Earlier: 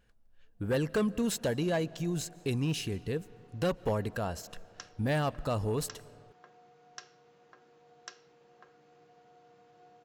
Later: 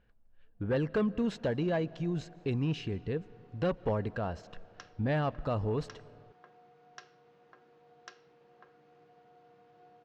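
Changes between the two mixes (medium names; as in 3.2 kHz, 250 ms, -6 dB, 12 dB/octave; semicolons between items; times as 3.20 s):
speech: add treble shelf 5.9 kHz -10.5 dB; master: add distance through air 150 m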